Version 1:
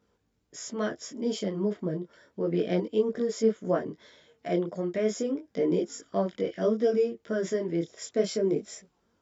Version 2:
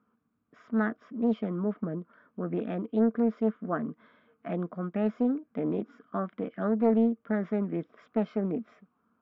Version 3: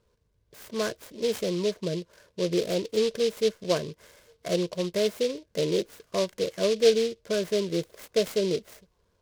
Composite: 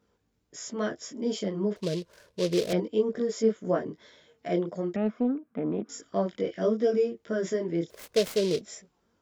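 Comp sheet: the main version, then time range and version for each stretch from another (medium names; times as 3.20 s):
1
1.76–2.73 s: from 3
4.96–5.89 s: from 2
7.90–8.61 s: from 3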